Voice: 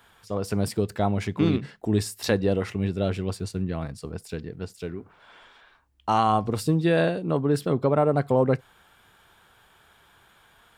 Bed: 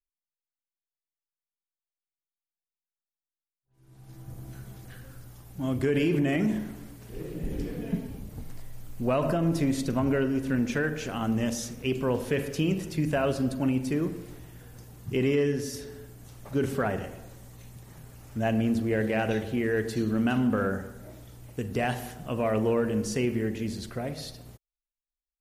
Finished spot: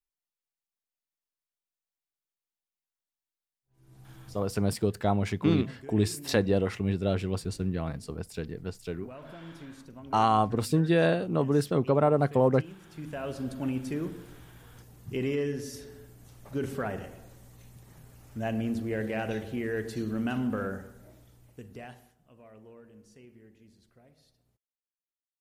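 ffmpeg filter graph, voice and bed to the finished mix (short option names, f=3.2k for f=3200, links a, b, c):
-filter_complex "[0:a]adelay=4050,volume=-2dB[a];[1:a]volume=14dB,afade=t=out:st=3.95:d=0.7:silence=0.112202,afade=t=in:st=12.79:d=0.89:silence=0.177828,afade=t=out:st=20.52:d=1.64:silence=0.0841395[b];[a][b]amix=inputs=2:normalize=0"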